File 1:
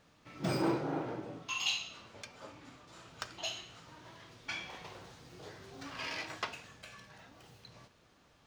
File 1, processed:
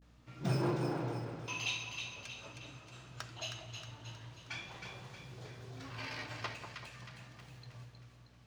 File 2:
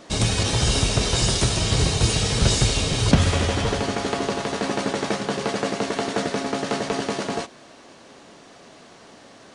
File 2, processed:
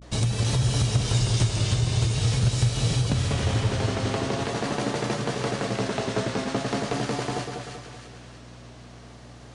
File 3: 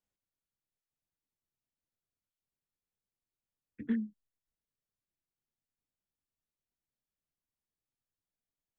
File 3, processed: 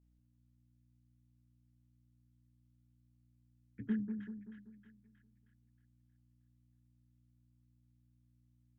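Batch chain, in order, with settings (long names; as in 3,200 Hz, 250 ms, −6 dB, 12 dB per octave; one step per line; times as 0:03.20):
parametric band 120 Hz +14 dB 0.42 octaves
downward compressor 6 to 1, threshold −17 dBFS
pitch vibrato 0.45 Hz 86 cents
mains hum 60 Hz, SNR 20 dB
echo with a time of its own for lows and highs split 1,200 Hz, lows 192 ms, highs 315 ms, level −6 dB
level −4 dB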